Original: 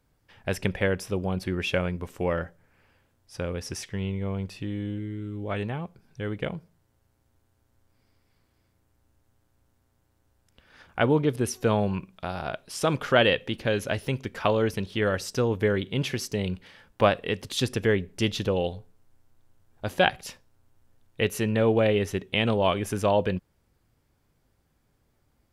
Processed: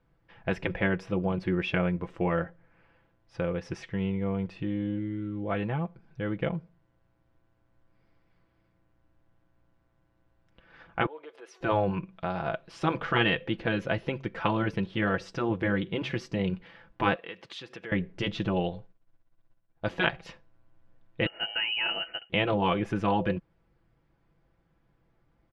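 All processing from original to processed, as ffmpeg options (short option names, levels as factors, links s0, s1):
-filter_complex "[0:a]asettb=1/sr,asplit=3[s0][s1][s2];[s0]atrim=end=11.064[s3];[s1]atrim=start=11.06:end=11.61,asetpts=PTS-STARTPTS,afade=t=in:d=0.004:c=qsin,afade=t=out:st=0.546:d=0.004:c=qsin,acompressor=threshold=0.02:ratio=6:attack=3.2:release=140:knee=1:detection=peak,highpass=f=490:w=0.5412,highpass=f=490:w=1.3066[s4];[s2]atrim=start=11.606[s5];[s3][s4]acrossfade=d=0.004:c1=hsin:c2=qsin[s6];[s6][s5]acrossfade=d=0.004:c1=qsin:c2=hsin,asettb=1/sr,asplit=3[s7][s8][s9];[s7]atrim=end=17.154[s10];[s8]atrim=start=17.15:end=17.92,asetpts=PTS-STARTPTS,afade=t=in:d=0.004:c=qsin,afade=t=out:st=0.766:d=0.004:c=qsin,highshelf=f=8500:g=-5,acompressor=threshold=0.0316:ratio=4:attack=3.2:release=140:knee=1:detection=peak,highpass=f=970:p=1[s11];[s9]atrim=start=17.916[s12];[s10][s11]acrossfade=d=0.004:c1=hsin:c2=qsin[s13];[s13][s12]acrossfade=d=0.004:c1=qsin:c2=hsin,asettb=1/sr,asplit=3[s14][s15][s16];[s14]atrim=end=18.744[s17];[s15]atrim=start=18.74:end=19.98,asetpts=PTS-STARTPTS,afade=t=in:d=0.004:c=qsin,afade=t=out:st=1.236:d=0.004:c=qsin,equalizer=f=4700:t=o:w=2.3:g=4.5,agate=range=0.0224:threshold=0.00282:ratio=3:release=100:detection=peak[s18];[s16]atrim=start=19.976[s19];[s17][s18]acrossfade=d=0.004:c1=hsin:c2=qsin[s20];[s20][s19]acrossfade=d=0.004:c1=qsin:c2=hsin,asettb=1/sr,asplit=3[s21][s22][s23];[s21]atrim=end=21.264[s24];[s22]atrim=start=21.26:end=22.3,asetpts=PTS-STARTPTS,afade=t=in:d=0.004:c=qsin,afade=t=out:st=1.036:d=0.004:c=qsin,highpass=f=310:w=0.5412,highpass=f=310:w=1.3066,bandreject=f=2200:w=5.1,lowpass=f=2800:t=q:w=0.5098,lowpass=f=2800:t=q:w=0.6013,lowpass=f=2800:t=q:w=0.9,lowpass=f=2800:t=q:w=2.563,afreqshift=-3300[s25];[s23]atrim=start=22.296[s26];[s24][s25]acrossfade=d=0.004:c1=hsin:c2=qsin[s27];[s27][s26]acrossfade=d=0.004:c1=qsin:c2=hsin,lowpass=2500,afftfilt=real='re*lt(hypot(re,im),0.398)':imag='im*lt(hypot(re,im),0.398)':win_size=1024:overlap=0.75,aecho=1:1:6:0.54"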